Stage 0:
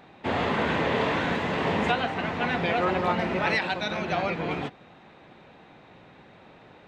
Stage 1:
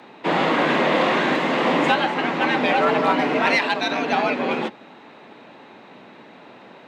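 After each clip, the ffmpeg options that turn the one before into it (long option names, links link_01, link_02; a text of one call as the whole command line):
ffmpeg -i in.wav -filter_complex "[0:a]afreqshift=78,asplit=2[link_01][link_02];[link_02]asoftclip=type=hard:threshold=-21dB,volume=-9dB[link_03];[link_01][link_03]amix=inputs=2:normalize=0,volume=4dB" out.wav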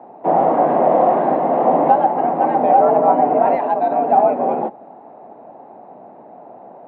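ffmpeg -i in.wav -af "lowpass=frequency=730:width_type=q:width=4.9,volume=-1dB" out.wav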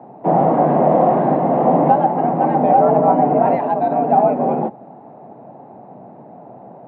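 ffmpeg -i in.wav -af "equalizer=frequency=130:width=0.88:gain=15,volume=-1.5dB" out.wav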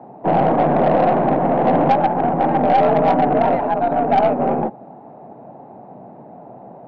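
ffmpeg -i in.wav -af "aeval=exprs='0.891*(cos(1*acos(clip(val(0)/0.891,-1,1)))-cos(1*PI/2))+0.0562*(cos(6*acos(clip(val(0)/0.891,-1,1)))-cos(6*PI/2))':channel_layout=same,asoftclip=type=tanh:threshold=-6.5dB" out.wav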